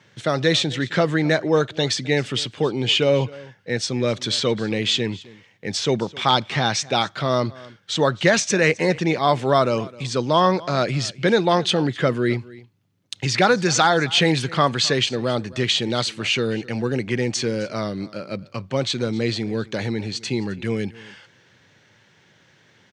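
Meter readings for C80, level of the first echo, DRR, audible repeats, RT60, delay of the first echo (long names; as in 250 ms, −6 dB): no reverb audible, −21.0 dB, no reverb audible, 1, no reverb audible, 262 ms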